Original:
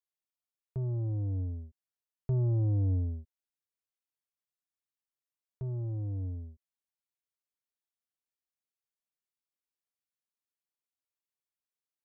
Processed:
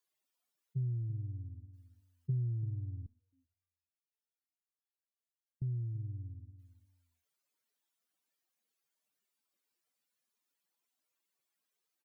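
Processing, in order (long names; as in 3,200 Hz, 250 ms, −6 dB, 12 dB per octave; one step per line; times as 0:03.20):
expanding power law on the bin magnitudes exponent 2.6
downward compressor, threshold −32 dBFS, peak gain reduction 6 dB
high-pass filter 150 Hz 24 dB per octave
repeating echo 337 ms, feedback 18%, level −12.5 dB
0:03.06–0:05.62: step-sequenced resonator 7.5 Hz 220–850 Hz
level +8 dB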